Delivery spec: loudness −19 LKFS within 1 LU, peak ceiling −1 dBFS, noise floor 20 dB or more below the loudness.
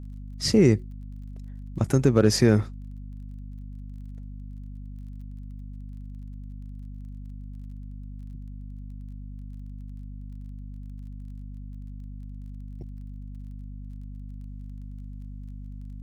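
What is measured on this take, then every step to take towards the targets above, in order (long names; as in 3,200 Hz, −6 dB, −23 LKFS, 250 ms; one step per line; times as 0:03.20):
crackle rate 25 per second; mains hum 50 Hz; hum harmonics up to 250 Hz; level of the hum −36 dBFS; integrated loudness −22.0 LKFS; sample peak −6.5 dBFS; target loudness −19.0 LKFS
→ click removal
hum removal 50 Hz, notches 5
level +3 dB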